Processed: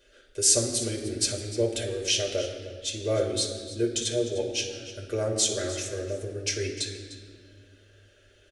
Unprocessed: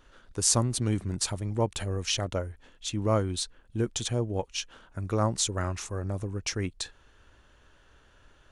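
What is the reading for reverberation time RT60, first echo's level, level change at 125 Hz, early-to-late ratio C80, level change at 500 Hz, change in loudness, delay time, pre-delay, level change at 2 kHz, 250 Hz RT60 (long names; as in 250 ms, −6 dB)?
1.7 s, −15.0 dB, −5.5 dB, 7.5 dB, +4.5 dB, +2.5 dB, 301 ms, 5 ms, +2.5 dB, 2.8 s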